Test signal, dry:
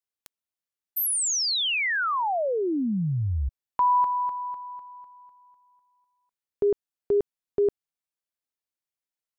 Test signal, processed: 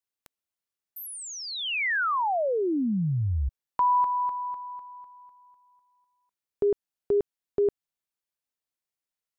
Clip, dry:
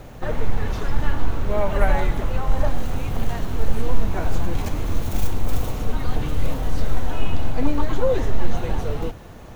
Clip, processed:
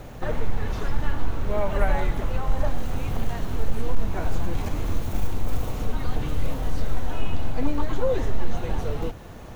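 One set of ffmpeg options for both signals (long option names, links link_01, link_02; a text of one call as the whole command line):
ffmpeg -i in.wav -filter_complex "[0:a]asplit=2[link_01][link_02];[link_02]acompressor=threshold=-21dB:ratio=6:attack=4.5:release=552,volume=-1dB[link_03];[link_01][link_03]amix=inputs=2:normalize=0,asoftclip=type=hard:threshold=-4dB,acrossover=split=2700[link_04][link_05];[link_05]acompressor=threshold=-35dB:ratio=4:attack=1:release=60[link_06];[link_04][link_06]amix=inputs=2:normalize=0,volume=-5.5dB" out.wav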